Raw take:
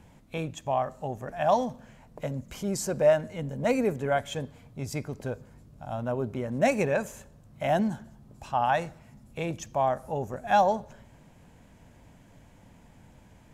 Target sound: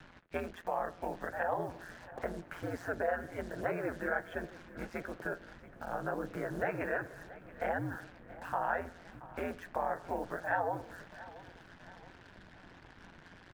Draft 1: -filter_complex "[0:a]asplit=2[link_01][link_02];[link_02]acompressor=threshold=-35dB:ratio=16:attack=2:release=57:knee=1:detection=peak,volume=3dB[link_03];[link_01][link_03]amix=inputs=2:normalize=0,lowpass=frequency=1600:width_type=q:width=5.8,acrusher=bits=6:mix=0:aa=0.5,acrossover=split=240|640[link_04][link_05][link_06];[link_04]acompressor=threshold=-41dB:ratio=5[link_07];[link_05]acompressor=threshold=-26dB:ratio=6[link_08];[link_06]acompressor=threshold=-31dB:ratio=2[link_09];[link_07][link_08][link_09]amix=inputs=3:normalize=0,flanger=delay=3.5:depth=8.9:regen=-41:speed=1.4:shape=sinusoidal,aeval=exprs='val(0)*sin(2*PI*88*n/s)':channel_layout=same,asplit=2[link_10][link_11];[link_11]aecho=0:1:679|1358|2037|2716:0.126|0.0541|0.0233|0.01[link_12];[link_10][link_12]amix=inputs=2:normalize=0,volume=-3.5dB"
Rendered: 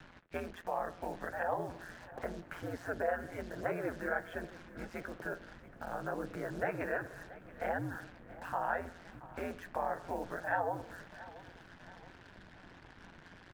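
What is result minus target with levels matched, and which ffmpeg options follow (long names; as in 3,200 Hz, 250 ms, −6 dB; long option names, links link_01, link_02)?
downward compressor: peak gain reduction +9 dB
-filter_complex "[0:a]asplit=2[link_01][link_02];[link_02]acompressor=threshold=-25.5dB:ratio=16:attack=2:release=57:knee=1:detection=peak,volume=3dB[link_03];[link_01][link_03]amix=inputs=2:normalize=0,lowpass=frequency=1600:width_type=q:width=5.8,acrusher=bits=6:mix=0:aa=0.5,acrossover=split=240|640[link_04][link_05][link_06];[link_04]acompressor=threshold=-41dB:ratio=5[link_07];[link_05]acompressor=threshold=-26dB:ratio=6[link_08];[link_06]acompressor=threshold=-31dB:ratio=2[link_09];[link_07][link_08][link_09]amix=inputs=3:normalize=0,flanger=delay=3.5:depth=8.9:regen=-41:speed=1.4:shape=sinusoidal,aeval=exprs='val(0)*sin(2*PI*88*n/s)':channel_layout=same,asplit=2[link_10][link_11];[link_11]aecho=0:1:679|1358|2037|2716:0.126|0.0541|0.0233|0.01[link_12];[link_10][link_12]amix=inputs=2:normalize=0,volume=-3.5dB"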